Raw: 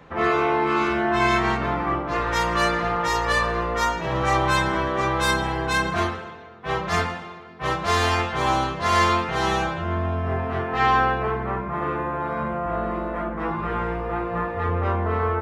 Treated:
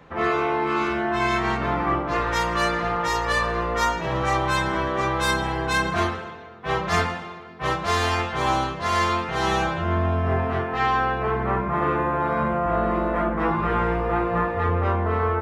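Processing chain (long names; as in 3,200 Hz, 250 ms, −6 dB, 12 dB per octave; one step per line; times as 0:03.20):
speech leveller 0.5 s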